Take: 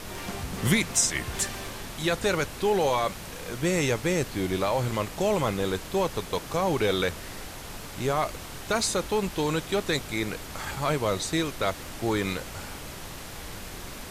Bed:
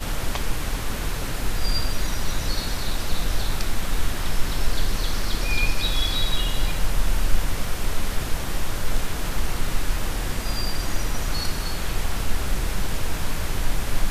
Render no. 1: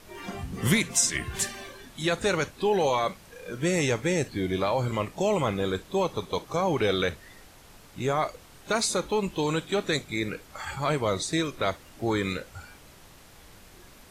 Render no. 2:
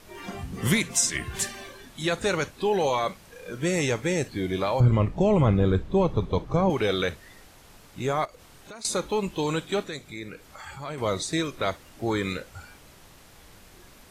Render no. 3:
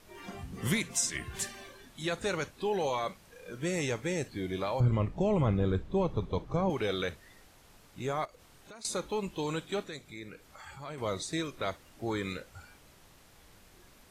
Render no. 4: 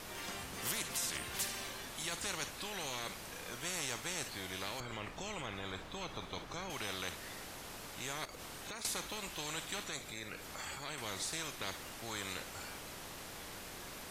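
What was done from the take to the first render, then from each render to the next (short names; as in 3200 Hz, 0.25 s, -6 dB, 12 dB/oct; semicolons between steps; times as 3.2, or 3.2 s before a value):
noise print and reduce 12 dB
4.8–6.7 RIAA curve playback; 8.25–8.85 compressor 3:1, threshold -45 dBFS; 9.83–10.98 compressor 1.5:1, threshold -47 dBFS
gain -7 dB
limiter -21 dBFS, peak gain reduction 5.5 dB; spectral compressor 4:1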